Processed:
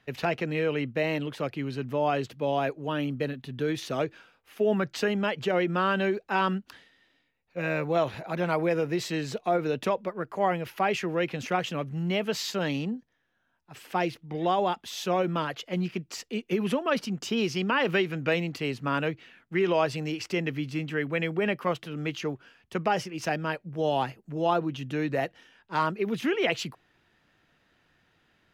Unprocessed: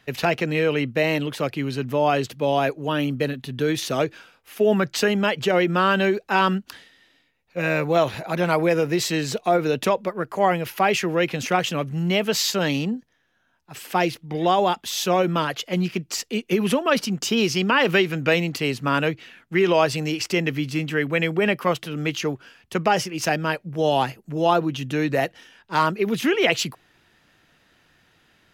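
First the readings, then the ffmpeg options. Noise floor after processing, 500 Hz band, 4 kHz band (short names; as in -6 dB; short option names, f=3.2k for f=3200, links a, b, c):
-71 dBFS, -6.0 dB, -9.0 dB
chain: -af "highshelf=f=5k:g=-9,volume=-6dB"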